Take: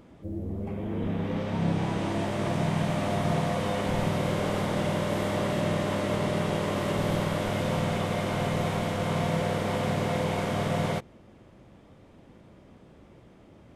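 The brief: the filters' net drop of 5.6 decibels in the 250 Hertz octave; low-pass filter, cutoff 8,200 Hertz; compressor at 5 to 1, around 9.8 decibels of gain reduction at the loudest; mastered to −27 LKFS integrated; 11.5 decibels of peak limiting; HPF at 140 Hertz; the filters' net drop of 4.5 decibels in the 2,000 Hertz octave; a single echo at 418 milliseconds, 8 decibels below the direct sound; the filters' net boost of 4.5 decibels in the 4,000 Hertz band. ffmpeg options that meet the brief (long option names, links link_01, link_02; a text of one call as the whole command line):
ffmpeg -i in.wav -af "highpass=140,lowpass=8200,equalizer=frequency=250:width_type=o:gain=-7,equalizer=frequency=2000:width_type=o:gain=-8,equalizer=frequency=4000:width_type=o:gain=9,acompressor=threshold=-38dB:ratio=5,alimiter=level_in=15dB:limit=-24dB:level=0:latency=1,volume=-15dB,aecho=1:1:418:0.398,volume=20.5dB" out.wav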